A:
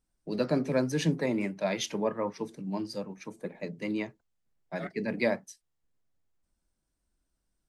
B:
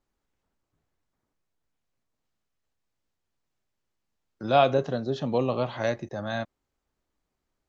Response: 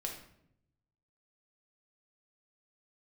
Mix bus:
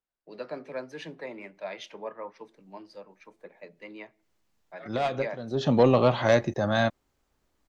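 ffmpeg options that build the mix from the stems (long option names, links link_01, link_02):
-filter_complex "[0:a]acrossover=split=410 4000:gain=0.158 1 0.141[link_01][link_02][link_03];[link_01][link_02][link_03]amix=inputs=3:normalize=0,volume=-5.5dB,asplit=3[link_04][link_05][link_06];[link_05]volume=-21.5dB[link_07];[1:a]acontrast=47,asoftclip=type=tanh:threshold=-10dB,adelay=450,volume=1.5dB[link_08];[link_06]apad=whole_len=358865[link_09];[link_08][link_09]sidechaincompress=threshold=-56dB:ratio=5:attack=42:release=225[link_10];[2:a]atrim=start_sample=2205[link_11];[link_07][link_11]afir=irnorm=-1:irlink=0[link_12];[link_04][link_10][link_12]amix=inputs=3:normalize=0"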